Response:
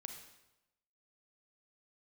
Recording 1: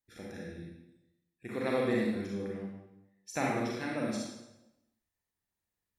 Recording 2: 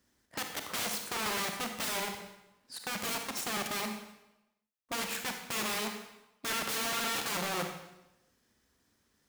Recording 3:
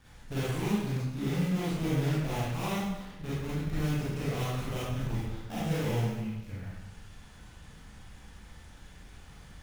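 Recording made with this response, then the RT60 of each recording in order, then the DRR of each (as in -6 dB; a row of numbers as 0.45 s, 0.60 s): 2; 0.95 s, 0.95 s, 0.95 s; -4.0 dB, 4.5 dB, -9.0 dB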